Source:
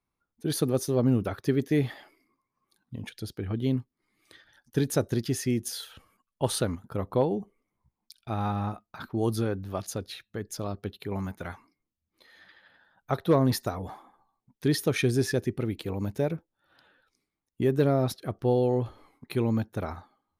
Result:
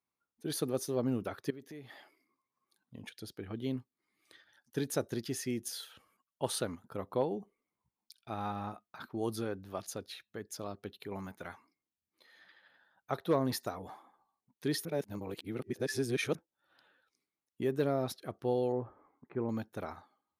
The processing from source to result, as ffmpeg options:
-filter_complex "[0:a]asettb=1/sr,asplit=3[a][b][c];[a]atrim=end=1.504[d];[b]atrim=start=1.5:end=2.95,asetpts=PTS-STARTPTS,afade=t=in:d=0.004:c=qsin,afade=t=out:st=1.446:d=0.004:c=qsin,acompressor=threshold=-39dB:ratio=4:attack=3.2:release=140:knee=1:detection=peak[e];[c]atrim=start=2.946[f];[d][e]acrossfade=d=0.004:c1=hsin:c2=qsin[g];[g][f]acrossfade=d=0.004:c1=qsin:c2=hsin,asettb=1/sr,asplit=3[h][i][j];[h]atrim=end=18.724[k];[i]atrim=start=18.72:end=19.49,asetpts=PTS-STARTPTS,afade=t=in:d=0.004:c=qsin,afade=t=out:st=0.766:d=0.004:c=qsin,lowpass=f=1.6k:w=0.5412,lowpass=f=1.6k:w=1.3066[l];[j]atrim=start=19.486[m];[k][l]acrossfade=d=0.004:c1=hsin:c2=qsin[n];[n][m]acrossfade=d=0.004:c1=qsin:c2=hsin,asplit=3[o][p][q];[o]atrim=end=14.852[r];[p]atrim=start=14.848:end=16.352,asetpts=PTS-STARTPTS,areverse[s];[q]atrim=start=16.348[t];[r][s]acrossfade=d=0.004:c1=hsin:c2=hsin[u];[u][t]acrossfade=d=0.004:c1=hsin:c2=hsin,highpass=f=260:p=1,volume=-5.5dB"

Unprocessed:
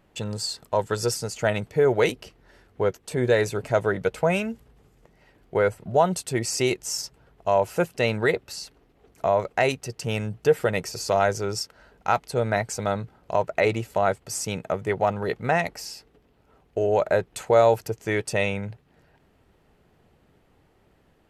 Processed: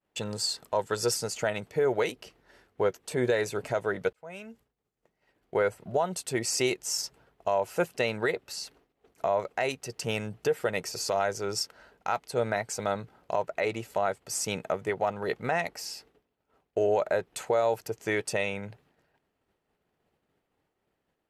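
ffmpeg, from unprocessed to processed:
-filter_complex "[0:a]asplit=2[a][b];[a]atrim=end=4.13,asetpts=PTS-STARTPTS,afade=t=out:st=4.126:d=0.004:c=hsin[c];[b]atrim=start=4.13,asetpts=PTS-STARTPTS,afade=t=in:d=1.42[d];[c][d]concat=n=2:v=0:a=1,agate=range=-33dB:threshold=-51dB:ratio=3:detection=peak,lowshelf=f=160:g=-11,alimiter=limit=-16dB:level=0:latency=1:release=410"

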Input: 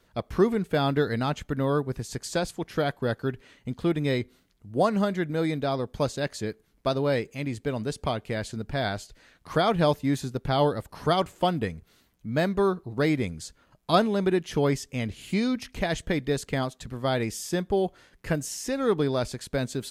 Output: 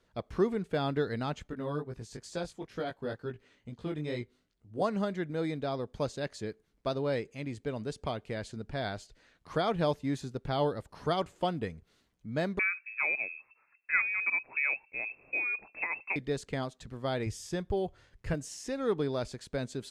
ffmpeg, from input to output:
-filter_complex "[0:a]asettb=1/sr,asplit=3[a][b][c];[a]atrim=end=1.484[d];[b]atrim=start=1.48:end=4.82,asetpts=PTS-STARTPTS,afade=t=in:d=0.004:c=qsin,afade=t=out:st=3.336:d=0.004:c=qsin,flanger=delay=17:depth=3.3:speed=2.2[e];[c]atrim=start=4.816[f];[d][e]acrossfade=d=0.004:c1=hsin:c2=qsin[g];[g][f]acrossfade=d=0.004:c1=qsin:c2=hsin,asettb=1/sr,asplit=3[h][i][j];[h]atrim=end=12.594[k];[i]atrim=start=12.59:end=16.16,asetpts=PTS-STARTPTS,afade=t=in:d=0.004:c=qsin,afade=t=out:st=3.566:d=0.004:c=qsin,lowpass=f=2.3k:t=q:w=0.5098,lowpass=f=2.3k:t=q:w=0.6013,lowpass=f=2.3k:t=q:w=0.9,lowpass=f=2.3k:t=q:w=2.563,afreqshift=-2700[l];[j]atrim=start=16.156[m];[k][l]acrossfade=d=0.004:c1=hsin:c2=qsin[n];[n][m]acrossfade=d=0.004:c1=qsin:c2=hsin,asettb=1/sr,asplit=3[o][p][q];[o]atrim=end=17.264[r];[p]atrim=start=17.26:end=18.34,asetpts=PTS-STARTPTS,afade=t=in:d=0.004:c=qsin,afade=t=out:st=1.076:d=0.004:c=qsin,lowshelf=f=150:t=q:w=1.5:g=9[s];[q]atrim=start=18.336[t];[r][s]acrossfade=d=0.004:c1=hsin:c2=qsin[u];[u][t]acrossfade=d=0.004:c1=qsin:c2=hsin,lowpass=8.6k,equalizer=f=450:w=1.5:g=2,volume=-7.5dB"

